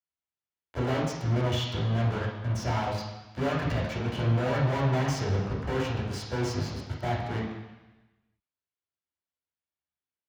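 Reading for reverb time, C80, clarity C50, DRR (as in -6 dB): 1.0 s, 5.0 dB, 2.0 dB, -4.5 dB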